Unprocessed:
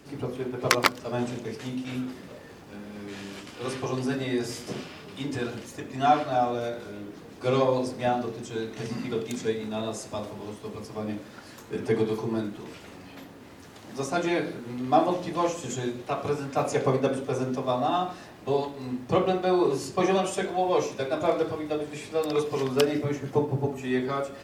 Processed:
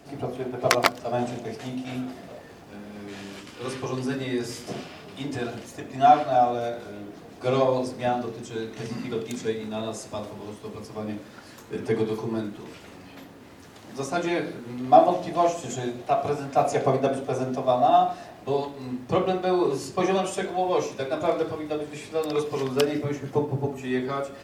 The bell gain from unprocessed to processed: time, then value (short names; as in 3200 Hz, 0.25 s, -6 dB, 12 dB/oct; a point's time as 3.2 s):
bell 690 Hz 0.25 oct
+14 dB
from 2.41 s +6 dB
from 3.37 s -3 dB
from 4.64 s +8.5 dB
from 7.83 s +1 dB
from 14.85 s +12 dB
from 18.43 s +1 dB